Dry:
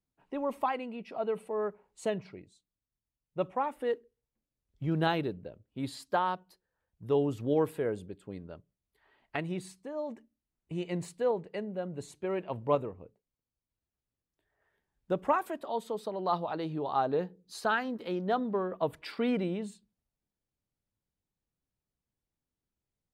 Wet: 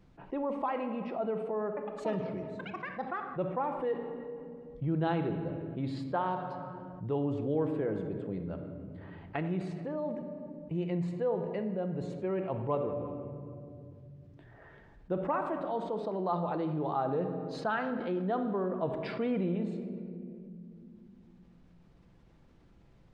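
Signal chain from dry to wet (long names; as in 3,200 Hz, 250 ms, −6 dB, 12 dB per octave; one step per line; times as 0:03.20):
0:01.66–0:03.69: delay with pitch and tempo change per echo 108 ms, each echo +6 semitones, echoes 3, each echo −6 dB
head-to-tape spacing loss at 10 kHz 29 dB
rectangular room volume 1,600 cubic metres, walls mixed, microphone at 0.78 metres
envelope flattener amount 50%
level −3.5 dB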